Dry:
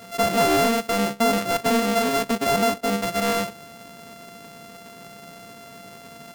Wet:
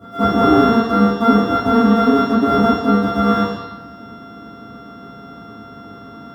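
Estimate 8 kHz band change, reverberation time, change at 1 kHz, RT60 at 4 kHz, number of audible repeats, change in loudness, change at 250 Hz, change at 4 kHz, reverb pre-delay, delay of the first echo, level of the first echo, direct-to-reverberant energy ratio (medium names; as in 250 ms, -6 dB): under -15 dB, 1.0 s, +6.0 dB, 1.2 s, no echo, +7.0 dB, +11.5 dB, -1.0 dB, 3 ms, no echo, no echo, -10.5 dB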